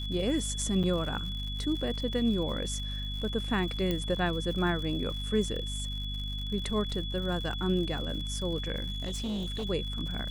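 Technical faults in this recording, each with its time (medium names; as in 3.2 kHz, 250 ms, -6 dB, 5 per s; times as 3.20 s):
crackle 110 per s -38 dBFS
hum 50 Hz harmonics 5 -36 dBFS
whine 3.4 kHz -38 dBFS
0.83–0.84 s: dropout 6.7 ms
3.91 s: pop -17 dBFS
8.90–9.66 s: clipped -30 dBFS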